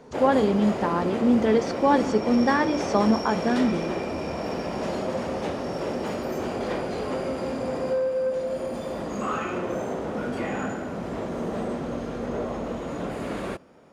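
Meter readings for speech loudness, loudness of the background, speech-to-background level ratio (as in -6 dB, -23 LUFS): -23.0 LUFS, -29.5 LUFS, 6.5 dB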